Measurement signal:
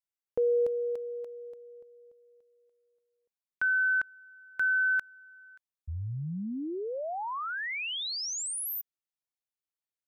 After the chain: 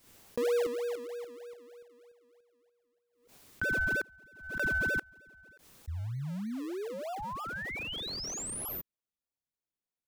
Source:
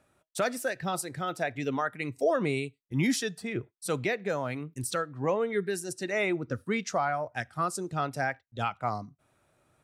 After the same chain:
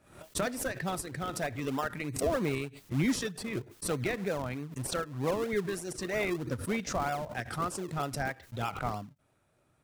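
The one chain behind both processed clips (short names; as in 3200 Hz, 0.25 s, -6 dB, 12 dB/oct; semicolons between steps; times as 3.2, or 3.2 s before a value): in parallel at -7 dB: decimation with a swept rate 41×, swing 100% 3.2 Hz; on the sum: backwards sustainer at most 95 dB/s; gain -4.5 dB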